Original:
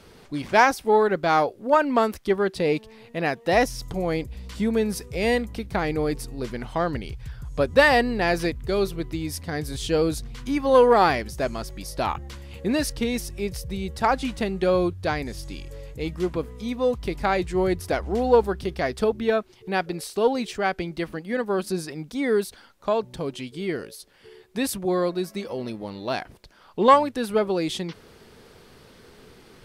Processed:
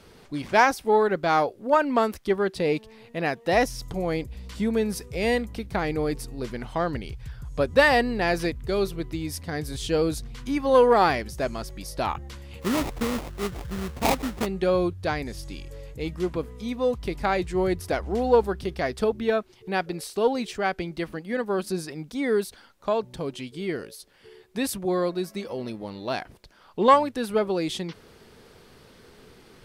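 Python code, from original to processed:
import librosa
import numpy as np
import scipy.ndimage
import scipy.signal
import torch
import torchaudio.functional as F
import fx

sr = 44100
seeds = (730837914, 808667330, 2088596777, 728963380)

y = fx.sample_hold(x, sr, seeds[0], rate_hz=1600.0, jitter_pct=20, at=(12.61, 14.45), fade=0.02)
y = y * 10.0 ** (-1.5 / 20.0)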